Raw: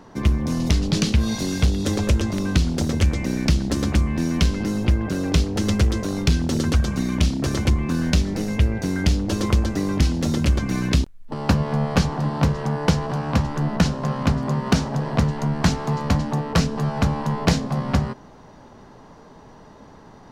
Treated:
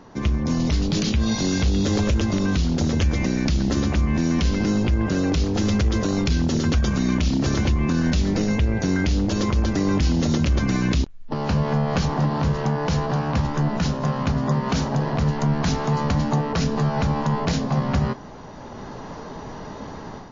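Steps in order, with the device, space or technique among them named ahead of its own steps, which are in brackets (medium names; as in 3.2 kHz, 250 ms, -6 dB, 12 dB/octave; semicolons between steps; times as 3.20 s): low-bitrate web radio (level rider gain up to 11 dB; peak limiter -12 dBFS, peak gain reduction 11 dB; MP3 32 kbps 16 kHz)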